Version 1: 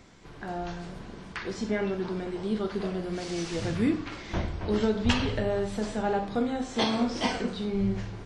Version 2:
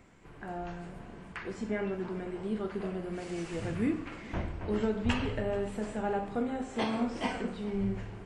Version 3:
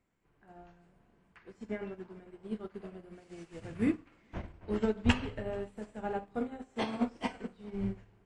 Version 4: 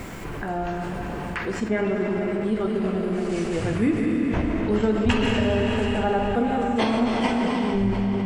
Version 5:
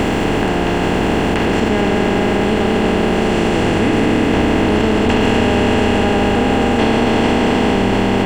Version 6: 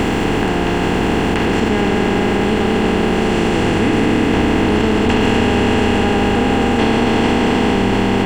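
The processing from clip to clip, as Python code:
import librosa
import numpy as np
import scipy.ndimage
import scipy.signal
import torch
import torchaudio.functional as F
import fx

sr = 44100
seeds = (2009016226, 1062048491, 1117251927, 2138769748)

y1 = fx.band_shelf(x, sr, hz=4600.0, db=-9.0, octaves=1.1)
y1 = fx.echo_heads(y1, sr, ms=144, heads='first and third', feedback_pct=60, wet_db=-21.0)
y1 = F.gain(torch.from_numpy(y1), -4.5).numpy()
y2 = fx.upward_expand(y1, sr, threshold_db=-41.0, expansion=2.5)
y2 = F.gain(torch.from_numpy(y2), 4.5).numpy()
y3 = fx.rev_freeverb(y2, sr, rt60_s=3.9, hf_ratio=0.85, predelay_ms=95, drr_db=5.0)
y3 = fx.env_flatten(y3, sr, amount_pct=70)
y3 = F.gain(torch.from_numpy(y3), 3.5).numpy()
y4 = fx.bin_compress(y3, sr, power=0.2)
y5 = fx.peak_eq(y4, sr, hz=600.0, db=-6.5, octaves=0.24)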